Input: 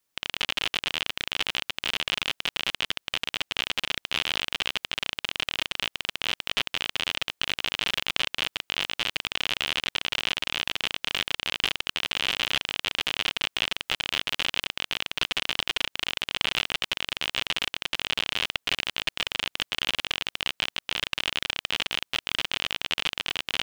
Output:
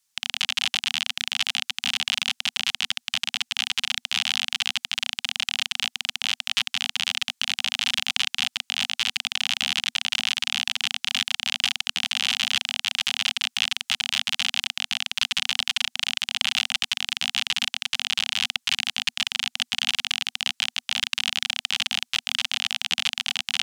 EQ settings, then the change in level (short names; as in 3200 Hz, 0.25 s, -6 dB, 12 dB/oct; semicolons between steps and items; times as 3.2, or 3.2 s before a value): Chebyshev band-stop 240–770 Hz, order 4; bell 6900 Hz +13.5 dB 2.4 oct; -3.5 dB